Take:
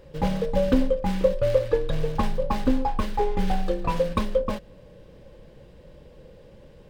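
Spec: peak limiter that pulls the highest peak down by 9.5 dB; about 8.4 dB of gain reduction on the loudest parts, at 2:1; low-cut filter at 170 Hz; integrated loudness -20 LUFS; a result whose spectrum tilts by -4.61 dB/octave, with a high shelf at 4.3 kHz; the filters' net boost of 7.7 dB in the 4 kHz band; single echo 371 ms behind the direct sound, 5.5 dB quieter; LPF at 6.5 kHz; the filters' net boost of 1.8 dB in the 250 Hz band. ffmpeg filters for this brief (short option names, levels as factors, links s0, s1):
-af "highpass=170,lowpass=6500,equalizer=f=250:t=o:g=3.5,equalizer=f=4000:t=o:g=7,highshelf=f=4300:g=6,acompressor=threshold=0.0316:ratio=2,alimiter=level_in=1.06:limit=0.0631:level=0:latency=1,volume=0.944,aecho=1:1:371:0.531,volume=4.47"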